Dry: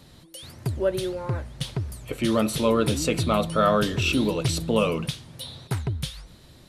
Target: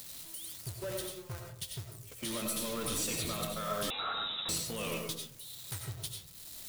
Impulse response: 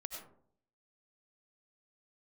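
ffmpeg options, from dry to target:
-filter_complex "[0:a]aeval=exprs='val(0)+0.5*0.0596*sgn(val(0))':c=same,agate=range=-34dB:threshold=-21dB:ratio=16:detection=peak,acompressor=threshold=-42dB:ratio=1.5,alimiter=level_in=4dB:limit=-24dB:level=0:latency=1:release=29,volume=-4dB,acompressor=mode=upward:threshold=-52dB:ratio=2.5,crystalizer=i=8:c=0,asoftclip=type=tanh:threshold=-26.5dB[a];[1:a]atrim=start_sample=2205[b];[a][b]afir=irnorm=-1:irlink=0,asettb=1/sr,asplit=3[c][d][e];[c]atrim=end=3.904[f];[d]atrim=start=3.9:end=4.49,asetpts=PTS-STARTPTS,afade=t=in:d=0.004:c=qsin,afade=t=out:st=0.586:d=0.004:c=qsin,lowpass=f=3.4k:t=q:w=0.5098,lowpass=f=3.4k:t=q:w=0.6013,lowpass=f=3.4k:t=q:w=0.9,lowpass=f=3.4k:t=q:w=2.563,afreqshift=-4000[g];[e]atrim=start=4.486[h];[f][g]acrossfade=d=0.004:c1=hsin:c2=qsin[i];[i][h]acrossfade=d=0.004:c1=qsin:c2=hsin"

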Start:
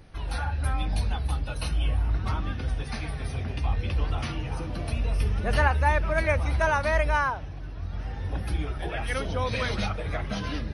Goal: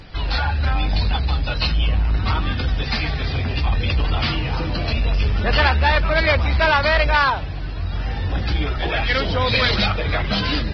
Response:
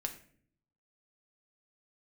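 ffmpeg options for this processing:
-filter_complex "[0:a]aeval=exprs='0.335*(cos(1*acos(clip(val(0)/0.335,-1,1)))-cos(1*PI/2))+0.0119*(cos(3*acos(clip(val(0)/0.335,-1,1)))-cos(3*PI/2))+0.0596*(cos(5*acos(clip(val(0)/0.335,-1,1)))-cos(5*PI/2))':c=same,asplit=2[a][b];[b]asoftclip=type=hard:threshold=-24.5dB,volume=-3dB[c];[a][c]amix=inputs=2:normalize=0,crystalizer=i=3.5:c=0,aresample=11025,aresample=44100" -ar 22050 -c:a libvorbis -b:a 16k

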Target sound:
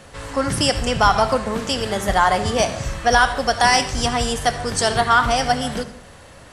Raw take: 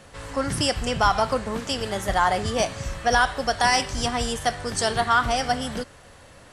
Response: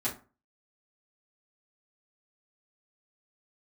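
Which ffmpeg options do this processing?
-filter_complex "[0:a]asplit=2[a][b];[1:a]atrim=start_sample=2205,asetrate=23814,aresample=44100,adelay=61[c];[b][c]afir=irnorm=-1:irlink=0,volume=-21.5dB[d];[a][d]amix=inputs=2:normalize=0,volume=4.5dB"

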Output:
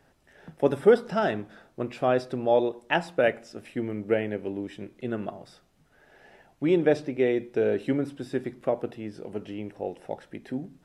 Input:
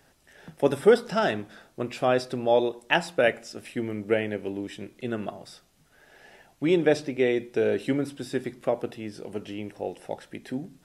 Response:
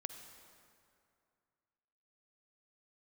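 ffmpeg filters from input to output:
-af "highshelf=f=2.8k:g=-10"

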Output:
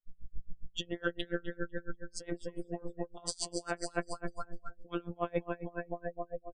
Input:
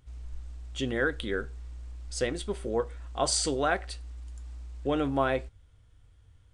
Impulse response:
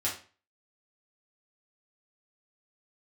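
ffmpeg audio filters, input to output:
-af "afftfilt=real='hypot(re,im)*cos(PI*b)':imag='0':win_size=1024:overlap=0.75,aecho=1:1:250|500|750|1000|1250|1500|1750:0.376|0.218|0.126|0.0733|0.0425|0.0247|0.0143,afftdn=nr=31:nf=-44,highshelf=f=5k:g=-2.5,areverse,acompressor=threshold=-43dB:ratio=6,areverse,aeval=exprs='val(0)*pow(10,-30*(0.5-0.5*cos(2*PI*7.2*n/s))/20)':c=same,volume=16dB"

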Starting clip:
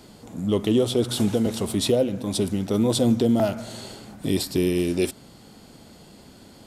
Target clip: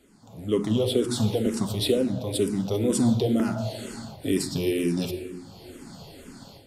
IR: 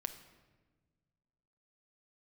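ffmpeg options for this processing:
-filter_complex "[0:a]dynaudnorm=f=210:g=3:m=14.5dB[a];[1:a]atrim=start_sample=2205,asetrate=37485,aresample=44100[b];[a][b]afir=irnorm=-1:irlink=0,asplit=2[c][d];[d]afreqshift=-2.1[e];[c][e]amix=inputs=2:normalize=1,volume=-8dB"

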